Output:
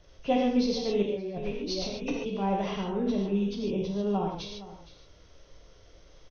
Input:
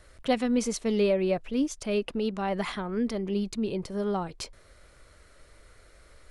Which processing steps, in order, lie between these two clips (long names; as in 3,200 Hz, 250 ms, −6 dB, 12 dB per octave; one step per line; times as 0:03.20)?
hearing-aid frequency compression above 2,100 Hz 1.5 to 1
flat-topped bell 1,600 Hz −8.5 dB 1.1 octaves
on a send: single-tap delay 466 ms −16.5 dB
0:01.02–0:02.26: on the sum: compressor whose output falls as the input rises −35 dBFS, ratio −1
reverb whose tail is shaped and stops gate 170 ms flat, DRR −1.5 dB
level −2.5 dB